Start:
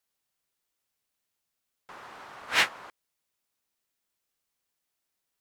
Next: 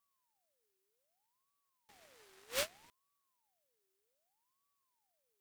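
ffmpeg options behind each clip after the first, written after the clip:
ffmpeg -i in.wav -af "aderivative,aeval=exprs='max(val(0),0)':channel_layout=same,aeval=exprs='val(0)*sin(2*PI*760*n/s+760*0.5/0.64*sin(2*PI*0.64*n/s))':channel_layout=same,volume=2dB" out.wav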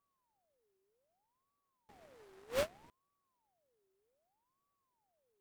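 ffmpeg -i in.wav -af "tiltshelf=frequency=1400:gain=8.5" out.wav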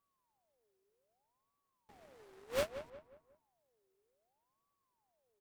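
ffmpeg -i in.wav -filter_complex "[0:a]asplit=2[link_01][link_02];[link_02]adelay=180,lowpass=frequency=2200:poles=1,volume=-11dB,asplit=2[link_03][link_04];[link_04]adelay=180,lowpass=frequency=2200:poles=1,volume=0.4,asplit=2[link_05][link_06];[link_06]adelay=180,lowpass=frequency=2200:poles=1,volume=0.4,asplit=2[link_07][link_08];[link_08]adelay=180,lowpass=frequency=2200:poles=1,volume=0.4[link_09];[link_01][link_03][link_05][link_07][link_09]amix=inputs=5:normalize=0" out.wav

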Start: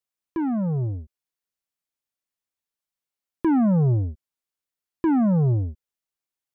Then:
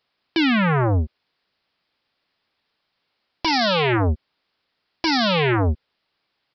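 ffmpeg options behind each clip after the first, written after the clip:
ffmpeg -i in.wav -af "lowshelf=frequency=71:gain=-8.5,aresample=11025,aeval=exprs='0.168*sin(PI/2*7.08*val(0)/0.168)':channel_layout=same,aresample=44100" out.wav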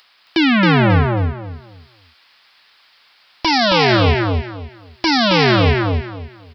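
ffmpeg -i in.wav -filter_complex "[0:a]acrossover=split=820[link_01][link_02];[link_02]acompressor=mode=upward:threshold=-44dB:ratio=2.5[link_03];[link_01][link_03]amix=inputs=2:normalize=0,aecho=1:1:270|540|810|1080:0.668|0.167|0.0418|0.0104,volume=4.5dB" out.wav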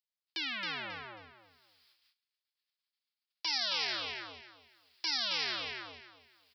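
ffmpeg -i in.wav -af "agate=range=-31dB:threshold=-49dB:ratio=16:detection=peak,aderivative,volume=-8.5dB" out.wav

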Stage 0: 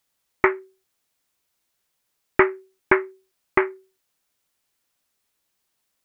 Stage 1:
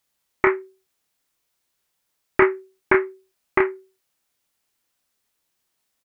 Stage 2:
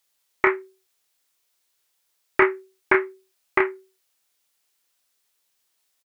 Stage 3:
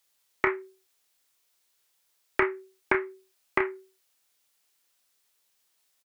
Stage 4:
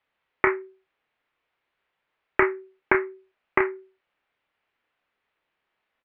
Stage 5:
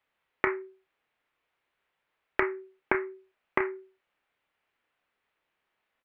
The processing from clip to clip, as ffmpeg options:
ffmpeg -i in.wav -filter_complex "[0:a]asplit=2[link_01][link_02];[link_02]adelay=29,volume=-5dB[link_03];[link_01][link_03]amix=inputs=2:normalize=0,volume=-1dB" out.wav
ffmpeg -i in.wav -af "firequalizer=gain_entry='entry(220,0);entry(420,6);entry(3600,11)':delay=0.05:min_phase=1,volume=-7.5dB" out.wav
ffmpeg -i in.wav -filter_complex "[0:a]acrossover=split=130[link_01][link_02];[link_02]acompressor=threshold=-24dB:ratio=2.5[link_03];[link_01][link_03]amix=inputs=2:normalize=0" out.wav
ffmpeg -i in.wav -af "lowpass=frequency=2500:width=0.5412,lowpass=frequency=2500:width=1.3066,volume=4.5dB" out.wav
ffmpeg -i in.wav -af "acompressor=threshold=-21dB:ratio=4,volume=-1.5dB" out.wav

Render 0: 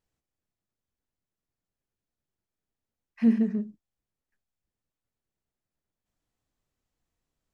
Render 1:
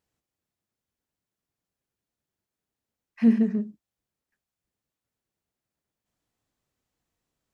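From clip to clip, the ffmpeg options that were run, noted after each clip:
ffmpeg -i in.wav -af "highpass=frequency=85:poles=1,volume=3dB" out.wav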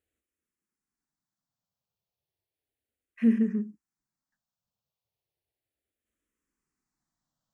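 ffmpeg -i in.wav -filter_complex "[0:a]asplit=2[link_01][link_02];[link_02]afreqshift=-0.34[link_03];[link_01][link_03]amix=inputs=2:normalize=1,volume=-1.5dB" out.wav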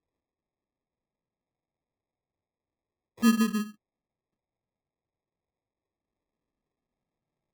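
ffmpeg -i in.wav -af "acrusher=samples=30:mix=1:aa=0.000001" out.wav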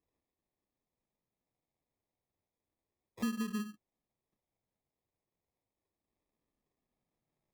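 ffmpeg -i in.wav -af "acompressor=threshold=-31dB:ratio=12,volume=-1dB" out.wav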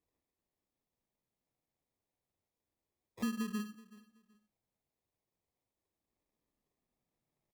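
ffmpeg -i in.wav -af "aecho=1:1:377|754:0.1|0.026,volume=-1dB" out.wav

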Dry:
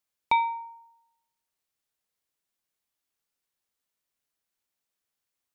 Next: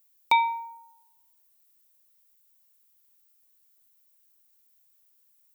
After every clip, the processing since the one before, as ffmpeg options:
ffmpeg -i in.wav -af "aemphasis=mode=production:type=bsi,volume=2dB" out.wav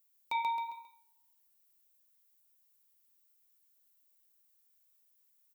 ffmpeg -i in.wav -filter_complex "[0:a]asplit=2[link_01][link_02];[link_02]aecho=0:1:134|268|402|536:0.531|0.175|0.0578|0.0191[link_03];[link_01][link_03]amix=inputs=2:normalize=0,flanger=delay=9.1:depth=5:regen=-65:speed=0.92:shape=sinusoidal,alimiter=limit=-21.5dB:level=0:latency=1:release=178,volume=-2.5dB" out.wav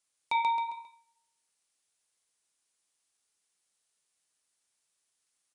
ffmpeg -i in.wav -af "aresample=22050,aresample=44100,volume=5dB" out.wav

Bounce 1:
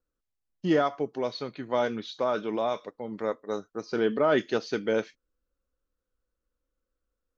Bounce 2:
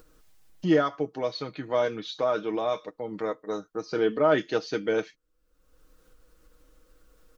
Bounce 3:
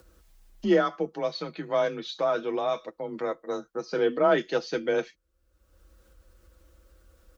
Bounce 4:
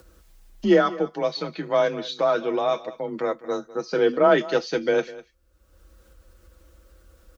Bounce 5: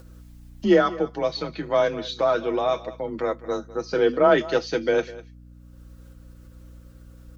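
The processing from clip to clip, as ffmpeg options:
ffmpeg -i in.wav -filter_complex "[0:a]aecho=1:1:6.4:0.55,asplit=2[link_01][link_02];[link_02]acompressor=mode=upward:threshold=-24dB:ratio=2.5,volume=-3dB[link_03];[link_01][link_03]amix=inputs=2:normalize=0,volume=-5.5dB" out.wav
ffmpeg -i in.wav -af "afreqshift=29" out.wav
ffmpeg -i in.wav -af "aecho=1:1:201:0.119,volume=4.5dB" out.wav
ffmpeg -i in.wav -af "aeval=exprs='val(0)+0.00562*(sin(2*PI*60*n/s)+sin(2*PI*2*60*n/s)/2+sin(2*PI*3*60*n/s)/3+sin(2*PI*4*60*n/s)/4+sin(2*PI*5*60*n/s)/5)':channel_layout=same" out.wav

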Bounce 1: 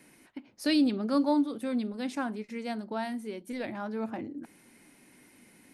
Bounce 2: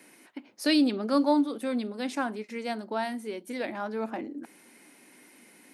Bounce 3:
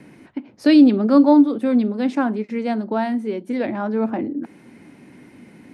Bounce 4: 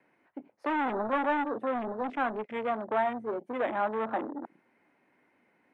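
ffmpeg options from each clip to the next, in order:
ffmpeg -i in.wav -af "highpass=270,volume=4dB" out.wav
ffmpeg -i in.wav -filter_complex "[0:a]aemphasis=mode=reproduction:type=riaa,acrossover=split=140|1700[link_01][link_02][link_03];[link_01]acompressor=mode=upward:threshold=-48dB:ratio=2.5[link_04];[link_04][link_02][link_03]amix=inputs=3:normalize=0,volume=6.5dB" out.wav
ffmpeg -i in.wav -filter_complex "[0:a]aeval=exprs='(tanh(12.6*val(0)+0.2)-tanh(0.2))/12.6':channel_layout=same,acrossover=split=500 2400:gain=0.112 1 0.158[link_01][link_02][link_03];[link_01][link_02][link_03]amix=inputs=3:normalize=0,afwtdn=0.00794,volume=3.5dB" out.wav

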